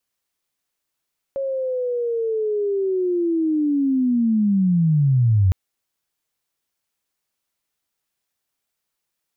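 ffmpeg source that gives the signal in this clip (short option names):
-f lavfi -i "aevalsrc='pow(10,(-21.5+9*t/4.16)/20)*sin(2*PI*(550*t-461*t*t/(2*4.16)))':d=4.16:s=44100"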